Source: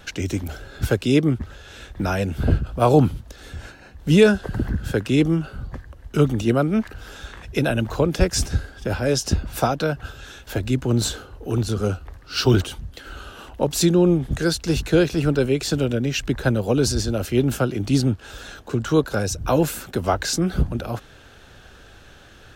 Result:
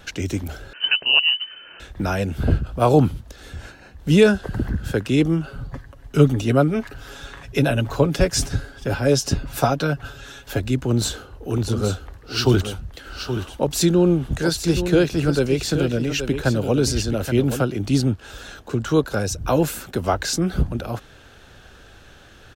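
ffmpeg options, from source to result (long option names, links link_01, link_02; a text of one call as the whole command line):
ffmpeg -i in.wav -filter_complex "[0:a]asettb=1/sr,asplit=3[link_01][link_02][link_03];[link_01]atrim=end=0.734[link_04];[link_02]atrim=start=0.73:end=1.8,asetpts=PTS-STARTPTS,afade=type=in:duration=0.004:curve=qsin,afade=type=out:start_time=1.066:duration=0.004:curve=qsin,lowpass=frequency=2600:width_type=q:width=0.5098,lowpass=frequency=2600:width_type=q:width=0.6013,lowpass=frequency=2600:width_type=q:width=0.9,lowpass=frequency=2600:width_type=q:width=2.563,afreqshift=-3100[link_05];[link_03]atrim=start=1.796[link_06];[link_04][link_05]acrossfade=duration=0.004:curve1=hsin:curve2=qsin[link_07];[link_07][link_06]acrossfade=duration=0.004:curve1=qsin:curve2=hsin,asettb=1/sr,asplit=3[link_08][link_09][link_10];[link_08]atrim=end=5.464[link_11];[link_09]atrim=start=5.46:end=10.6,asetpts=PTS-STARTPTS,afade=type=in:duration=0.004:curve=qsin,afade=type=out:start_time=5.136:duration=0.004:curve=qsin,aecho=1:1:7.2:0.57,atrim=end_sample=226674[link_12];[link_10]atrim=start=10.596[link_13];[link_11][link_12]acrossfade=duration=0.004:curve1=hsin:curve2=qsin[link_14];[link_14][link_13]acrossfade=duration=0.004:curve1=qsin:curve2=hsin,asplit=3[link_15][link_16][link_17];[link_15]afade=type=out:start_time=11.56:duration=0.02[link_18];[link_16]aecho=1:1:825:0.355,afade=type=in:start_time=11.56:duration=0.02,afade=type=out:start_time=17.61:duration=0.02[link_19];[link_17]afade=type=in:start_time=17.61:duration=0.02[link_20];[link_18][link_19][link_20]amix=inputs=3:normalize=0" out.wav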